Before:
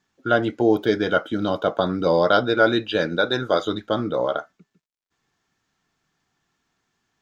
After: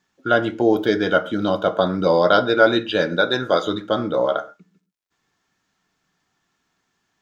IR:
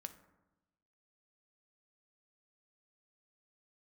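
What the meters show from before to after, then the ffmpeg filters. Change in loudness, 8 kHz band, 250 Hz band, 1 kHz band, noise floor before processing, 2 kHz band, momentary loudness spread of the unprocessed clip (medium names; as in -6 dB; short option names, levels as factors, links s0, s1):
+2.0 dB, no reading, +1.5 dB, +2.5 dB, -79 dBFS, +2.5 dB, 7 LU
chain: -filter_complex "[0:a]asplit=2[s0][s1];[1:a]atrim=start_sample=2205,atrim=end_sample=6174,lowshelf=f=170:g=-6.5[s2];[s1][s2]afir=irnorm=-1:irlink=0,volume=3.76[s3];[s0][s3]amix=inputs=2:normalize=0,volume=0.422"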